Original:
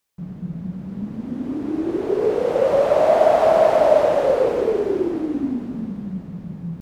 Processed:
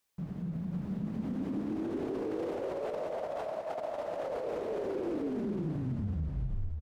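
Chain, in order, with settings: tape stop at the end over 1.75 s; notches 60/120/180/240/300/360/420/480/540 Hz; negative-ratio compressor -21 dBFS, ratio -0.5; limiter -24 dBFS, peak gain reduction 15.5 dB; on a send: echo 0.546 s -3.5 dB; on the sum: gain -6 dB

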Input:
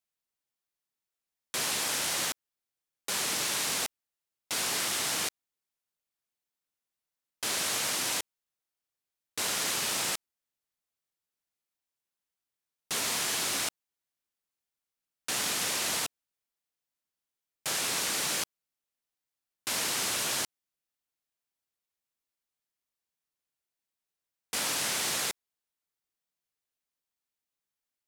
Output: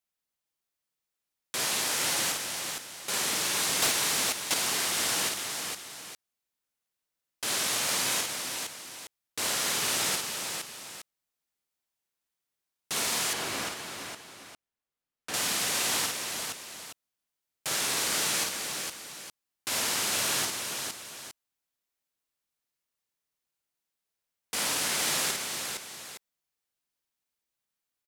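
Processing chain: tapped delay 51/460/862 ms -3.5/-4.5/-12.5 dB; 3.82–4.54 sample leveller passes 2; 13.33–15.34 high shelf 3200 Hz -9.5 dB

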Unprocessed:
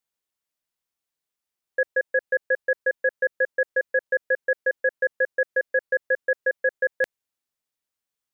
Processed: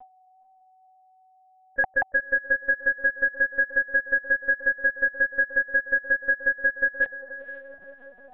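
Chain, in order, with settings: whine 760 Hz -32 dBFS; spectral noise reduction 23 dB; on a send: diffused feedback echo 0.489 s, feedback 43%, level -15 dB; on the sum: LPC vocoder at 8 kHz pitch kept

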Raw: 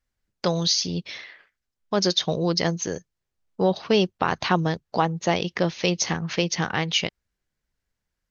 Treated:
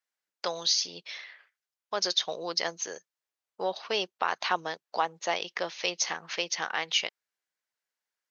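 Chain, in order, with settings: HPF 650 Hz 12 dB/oct; gain -3.5 dB

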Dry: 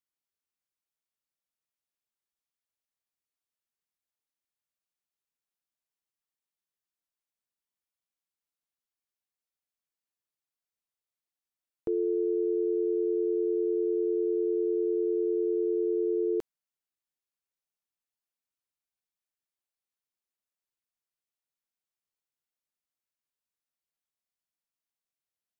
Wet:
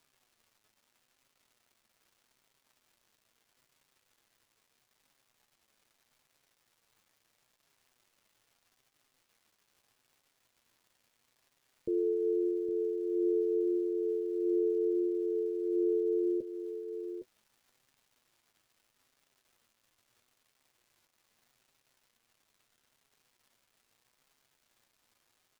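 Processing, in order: steep low-pass 600 Hz 96 dB/oct; crackle 490/s -54 dBFS; flange 0.78 Hz, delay 7.2 ms, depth 2.2 ms, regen +46%; on a send: echo 0.812 s -9.5 dB

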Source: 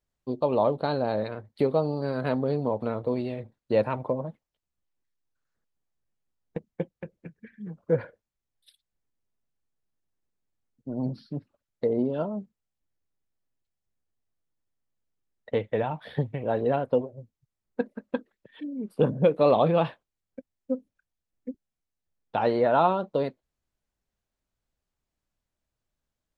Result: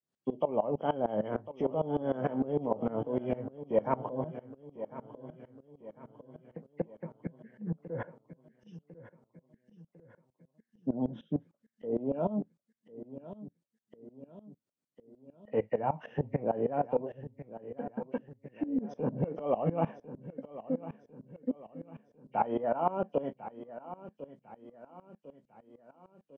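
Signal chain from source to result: nonlinear frequency compression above 1800 Hz 1.5:1; HPF 120 Hz 24 dB/oct; bell 240 Hz +8 dB 2.4 oct; limiter -20 dBFS, peak gain reduction 16 dB; doubler 18 ms -11.5 dB; feedback echo 1.05 s, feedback 56%, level -13 dB; dynamic EQ 760 Hz, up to +7 dB, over -45 dBFS, Q 1.3; dB-ramp tremolo swelling 6.6 Hz, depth 19 dB

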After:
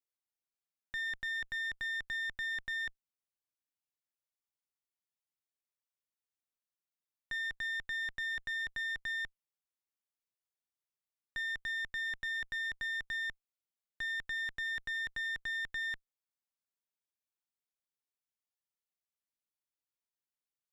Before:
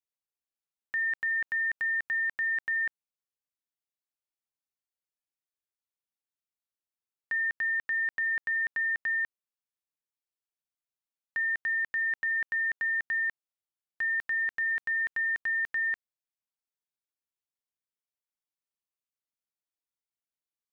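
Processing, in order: one diode to ground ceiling -38 dBFS; gain -4.5 dB

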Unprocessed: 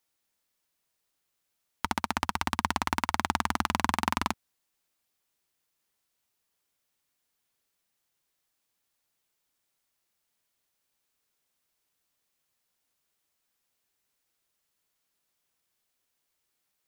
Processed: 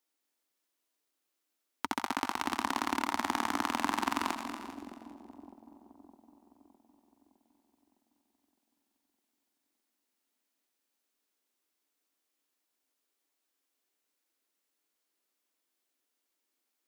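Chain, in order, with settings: regenerating reverse delay 0.198 s, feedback 48%, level -9 dB; resonant low shelf 200 Hz -11.5 dB, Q 3; split-band echo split 670 Hz, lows 0.61 s, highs 85 ms, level -9 dB; gain -5 dB

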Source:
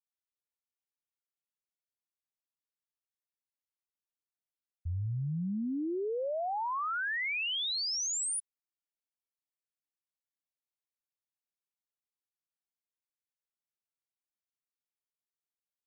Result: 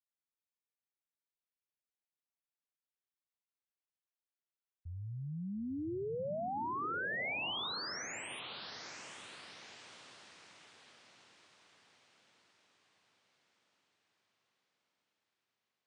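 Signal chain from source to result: LPF 4000 Hz; low shelf 85 Hz -11.5 dB; diffused feedback echo 0.925 s, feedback 49%, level -8 dB; gain -4.5 dB

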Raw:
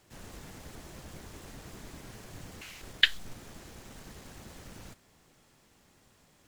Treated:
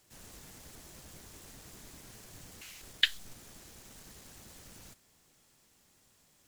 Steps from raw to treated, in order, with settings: high shelf 3900 Hz +11 dB; gain -7.5 dB

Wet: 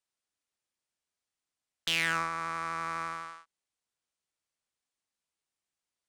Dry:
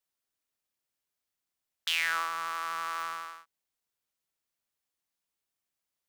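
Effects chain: downsampling 22050 Hz; added harmonics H 6 -20 dB, 7 -36 dB, 8 -36 dB, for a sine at -14.5 dBFS

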